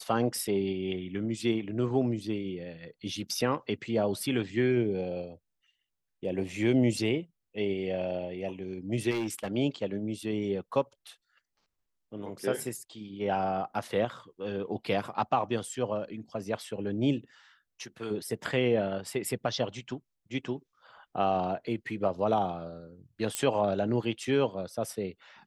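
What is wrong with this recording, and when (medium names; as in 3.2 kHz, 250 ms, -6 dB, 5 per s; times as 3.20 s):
9.10–9.48 s: clipped -27.5 dBFS
23.35 s: pop -13 dBFS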